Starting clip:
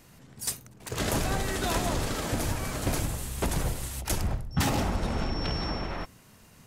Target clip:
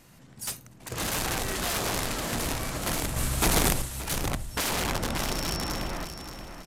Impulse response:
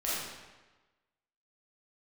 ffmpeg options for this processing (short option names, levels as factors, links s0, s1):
-filter_complex "[0:a]equalizer=f=83:t=o:w=0.44:g=-4.5,bandreject=f=430:w=12,aeval=exprs='(mod(14.1*val(0)+1,2)-1)/14.1':c=same,aresample=32000,aresample=44100,asplit=2[s0][s1];[s1]aecho=0:1:577|1154|1731|2308:0.355|0.114|0.0363|0.0116[s2];[s0][s2]amix=inputs=2:normalize=0,asettb=1/sr,asplit=3[s3][s4][s5];[s3]atrim=end=3.164[s6];[s4]atrim=start=3.16:end=3.82,asetpts=PTS-STARTPTS,afade=t=in:d=0.004:c=qsin,afade=t=out:st=0.656:d=0.004:c=qsin,acontrast=54[s7];[s5]atrim=start=3.816[s8];[s6][s7]acrossfade=d=0.004:c1=hsin:c2=qsin[s9];[s9][s8]acrossfade=d=0.004:c1=qsin:c2=hsin"